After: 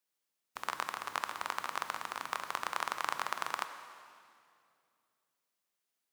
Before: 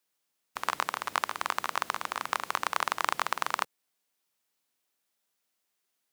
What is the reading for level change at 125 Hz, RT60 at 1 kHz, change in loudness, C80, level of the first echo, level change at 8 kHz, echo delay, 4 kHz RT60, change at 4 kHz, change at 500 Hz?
−6.0 dB, 2.2 s, −6.0 dB, 10.0 dB, no echo audible, −6.0 dB, no echo audible, 2.1 s, −6.0 dB, −6.0 dB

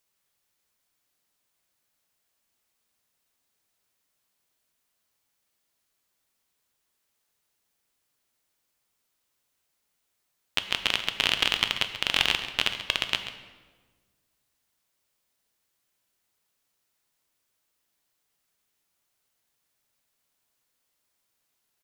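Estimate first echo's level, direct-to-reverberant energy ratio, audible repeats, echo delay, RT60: −12.5 dB, 6.5 dB, 1, 136 ms, 1.4 s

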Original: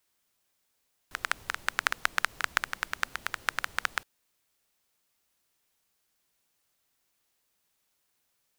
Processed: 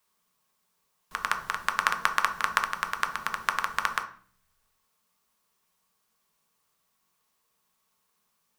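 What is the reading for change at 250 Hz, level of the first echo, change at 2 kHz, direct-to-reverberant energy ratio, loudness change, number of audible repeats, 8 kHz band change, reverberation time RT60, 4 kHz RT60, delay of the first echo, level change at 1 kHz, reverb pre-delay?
+4.0 dB, no echo audible, +1.5 dB, 3.0 dB, +3.0 dB, no echo audible, +0.5 dB, 0.45 s, 0.40 s, no echo audible, +7.0 dB, 4 ms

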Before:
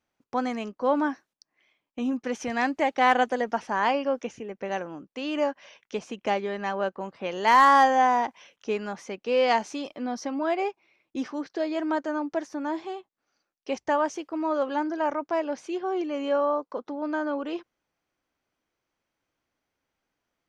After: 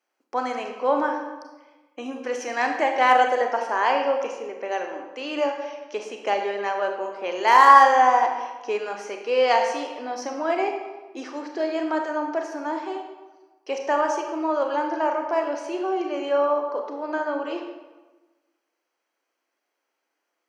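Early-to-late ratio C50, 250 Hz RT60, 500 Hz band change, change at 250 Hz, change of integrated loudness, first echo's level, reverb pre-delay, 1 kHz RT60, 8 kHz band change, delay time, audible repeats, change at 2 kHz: 5.0 dB, 1.4 s, +3.5 dB, −2.0 dB, +4.0 dB, no echo audible, 28 ms, 1.2 s, can't be measured, no echo audible, no echo audible, +3.5 dB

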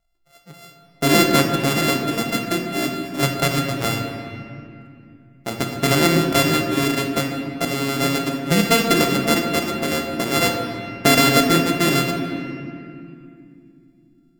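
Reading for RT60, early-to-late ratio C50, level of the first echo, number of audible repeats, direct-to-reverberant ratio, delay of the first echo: 2.5 s, 4.0 dB, no echo audible, no echo audible, 2.0 dB, no echo audible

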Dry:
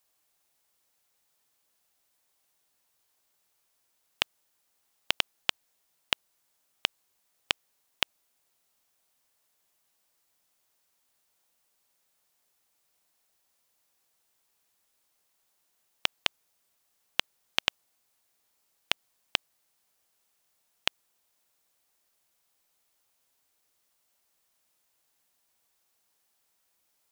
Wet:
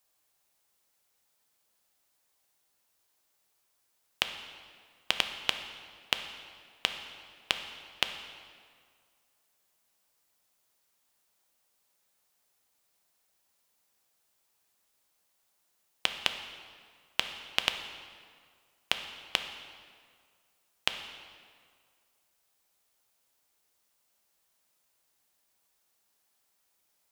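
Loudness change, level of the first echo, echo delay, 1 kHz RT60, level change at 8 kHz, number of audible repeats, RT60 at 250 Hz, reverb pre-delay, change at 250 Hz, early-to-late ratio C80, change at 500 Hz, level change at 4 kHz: −1.5 dB, no echo audible, no echo audible, 2.0 s, −0.5 dB, no echo audible, 1.9 s, 4 ms, 0.0 dB, 9.5 dB, 0.0 dB, −0.5 dB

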